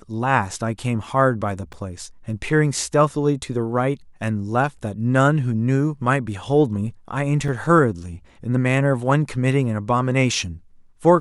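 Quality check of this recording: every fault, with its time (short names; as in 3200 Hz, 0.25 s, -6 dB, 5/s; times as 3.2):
1.73–1.74 gap 6.4 ms
7.48 gap 4 ms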